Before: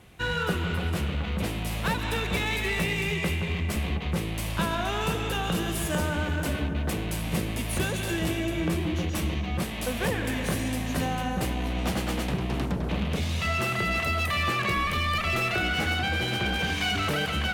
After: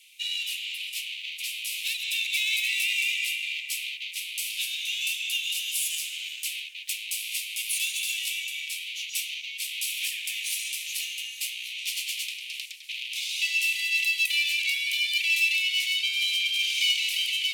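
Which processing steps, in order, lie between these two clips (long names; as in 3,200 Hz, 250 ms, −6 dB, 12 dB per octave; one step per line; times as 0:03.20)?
Butterworth high-pass 2,300 Hz 72 dB per octave
level +7 dB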